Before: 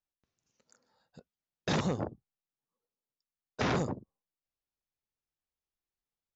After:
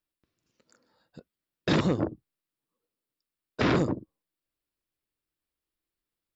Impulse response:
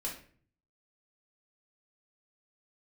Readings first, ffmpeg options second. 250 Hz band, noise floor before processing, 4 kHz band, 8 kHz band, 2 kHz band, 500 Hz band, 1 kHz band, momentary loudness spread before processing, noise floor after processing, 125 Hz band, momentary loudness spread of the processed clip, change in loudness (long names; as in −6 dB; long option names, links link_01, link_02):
+7.5 dB, below −85 dBFS, +4.0 dB, can't be measured, +5.0 dB, +6.0 dB, +3.0 dB, 12 LU, below −85 dBFS, +5.0 dB, 11 LU, +6.0 dB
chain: -af "equalizer=frequency=315:width_type=o:width=0.33:gain=8,equalizer=frequency=800:width_type=o:width=0.33:gain=-6,equalizer=frequency=6300:width_type=o:width=0.33:gain=-10,volume=5dB"